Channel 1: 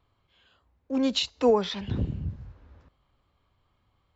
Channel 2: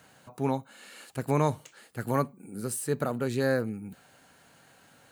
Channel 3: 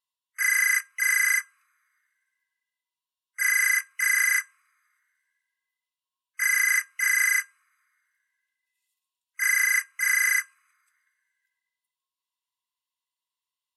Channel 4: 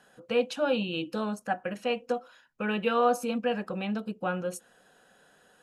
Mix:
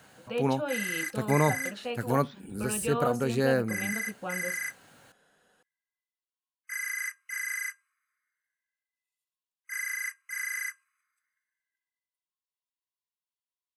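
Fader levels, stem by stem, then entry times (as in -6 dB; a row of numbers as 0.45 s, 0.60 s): -19.5 dB, +1.0 dB, -11.5 dB, -6.0 dB; 0.60 s, 0.00 s, 0.30 s, 0.00 s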